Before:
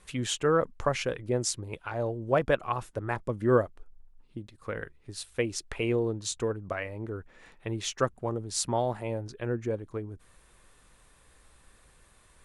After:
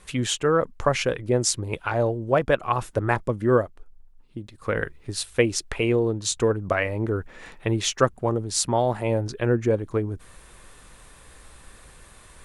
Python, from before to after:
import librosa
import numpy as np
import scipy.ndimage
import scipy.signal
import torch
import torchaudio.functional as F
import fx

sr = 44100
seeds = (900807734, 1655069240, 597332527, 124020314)

y = fx.rider(x, sr, range_db=4, speed_s=0.5)
y = y * librosa.db_to_amplitude(7.0)